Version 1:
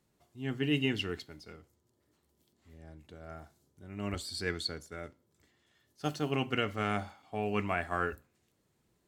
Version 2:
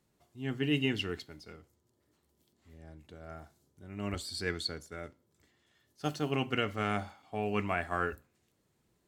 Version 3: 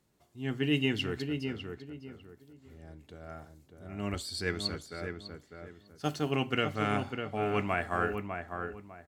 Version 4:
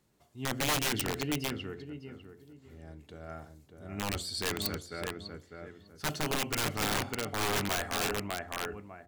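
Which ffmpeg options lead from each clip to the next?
-af anull
-filter_complex "[0:a]asplit=2[s0][s1];[s1]adelay=601,lowpass=f=1700:p=1,volume=0.531,asplit=2[s2][s3];[s3]adelay=601,lowpass=f=1700:p=1,volume=0.29,asplit=2[s4][s5];[s5]adelay=601,lowpass=f=1700:p=1,volume=0.29,asplit=2[s6][s7];[s7]adelay=601,lowpass=f=1700:p=1,volume=0.29[s8];[s0][s2][s4][s6][s8]amix=inputs=5:normalize=0,volume=1.19"
-af "aeval=exprs='(mod(18.8*val(0)+1,2)-1)/18.8':c=same,bandreject=f=87.95:t=h:w=4,bandreject=f=175.9:t=h:w=4,bandreject=f=263.85:t=h:w=4,bandreject=f=351.8:t=h:w=4,bandreject=f=439.75:t=h:w=4,bandreject=f=527.7:t=h:w=4,bandreject=f=615.65:t=h:w=4,bandreject=f=703.6:t=h:w=4,volume=1.19"

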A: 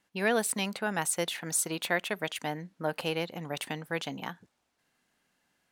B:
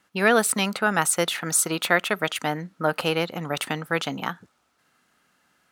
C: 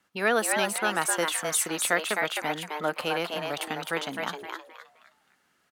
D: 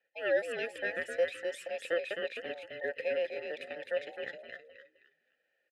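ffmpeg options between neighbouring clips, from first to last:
-af "highpass=51,equalizer=f=1300:w=5.2:g=10.5,volume=2.37"
-filter_complex "[0:a]acrossover=split=220|1800|5100[s0][s1][s2][s3];[s0]acompressor=threshold=0.00708:ratio=6[s4];[s4][s1][s2][s3]amix=inputs=4:normalize=0,asplit=5[s5][s6][s7][s8][s9];[s6]adelay=260,afreqshift=150,volume=0.631[s10];[s7]adelay=520,afreqshift=300,volume=0.195[s11];[s8]adelay=780,afreqshift=450,volume=0.061[s12];[s9]adelay=1040,afreqshift=600,volume=0.0188[s13];[s5][s10][s11][s12][s13]amix=inputs=5:normalize=0,volume=0.562"
-filter_complex "[0:a]afftfilt=real='real(if(between(b,1,1008),(2*floor((b-1)/48)+1)*48-b,b),0)':imag='imag(if(between(b,1,1008),(2*floor((b-1)/48)+1)*48-b,b),0)*if(between(b,1,1008),-1,1)':win_size=2048:overlap=0.75,asplit=3[s0][s1][s2];[s0]bandpass=f=530:t=q:w=8,volume=1[s3];[s1]bandpass=f=1840:t=q:w=8,volume=0.501[s4];[s2]bandpass=f=2480:t=q:w=8,volume=0.355[s5];[s3][s4][s5]amix=inputs=3:normalize=0,aresample=32000,aresample=44100,volume=1.33"

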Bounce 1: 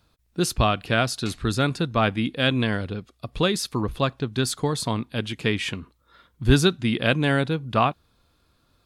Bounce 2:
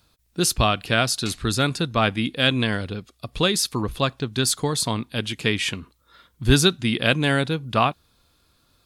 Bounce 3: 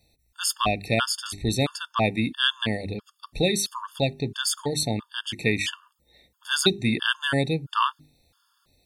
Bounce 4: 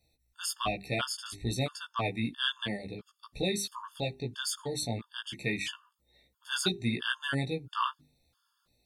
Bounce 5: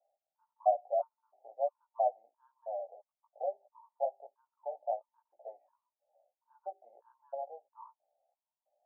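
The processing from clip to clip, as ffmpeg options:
-af "highshelf=f=3000:g=8"
-af "bandreject=f=50:t=h:w=6,bandreject=f=100:t=h:w=6,bandreject=f=150:t=h:w=6,bandreject=f=200:t=h:w=6,bandreject=f=250:t=h:w=6,bandreject=f=300:t=h:w=6,bandreject=f=350:t=h:w=6,bandreject=f=400:t=h:w=6,afftfilt=real='re*gt(sin(2*PI*1.5*pts/sr)*(1-2*mod(floor(b*sr/1024/900),2)),0)':imag='im*gt(sin(2*PI*1.5*pts/sr)*(1-2*mod(floor(b*sr/1024/900),2)),0)':win_size=1024:overlap=0.75"
-af "flanger=delay=15:depth=2.2:speed=1.1,volume=0.562"
-af "asuperpass=centerf=680:order=8:qfactor=2.7,volume=2.51"

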